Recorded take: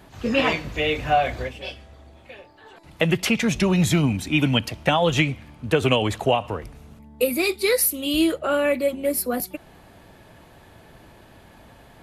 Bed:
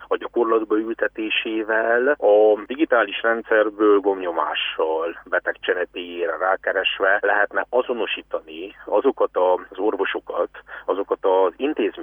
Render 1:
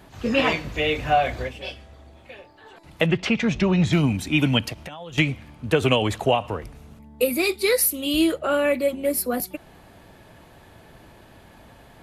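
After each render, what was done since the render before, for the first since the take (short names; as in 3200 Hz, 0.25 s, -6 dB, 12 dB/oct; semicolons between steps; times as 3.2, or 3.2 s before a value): 3.06–3.93 air absorption 130 m; 4.73–5.18 compressor 16:1, threshold -33 dBFS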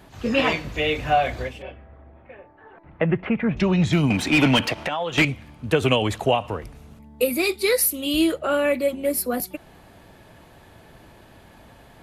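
1.62–3.57 LPF 2000 Hz 24 dB/oct; 4.1–5.25 overdrive pedal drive 22 dB, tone 1900 Hz, clips at -7 dBFS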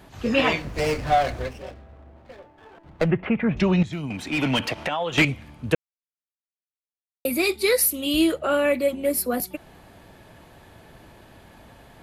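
0.62–3.11 running maximum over 9 samples; 3.83–4.9 fade in quadratic, from -12 dB; 5.75–7.25 mute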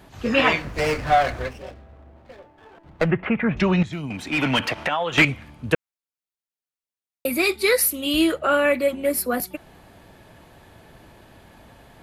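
dynamic EQ 1500 Hz, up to +6 dB, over -39 dBFS, Q 0.91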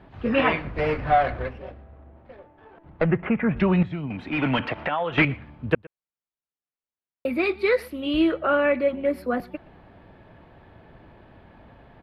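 air absorption 410 m; echo 0.119 s -24 dB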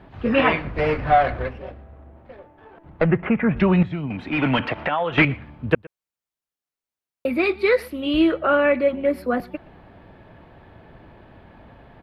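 gain +3 dB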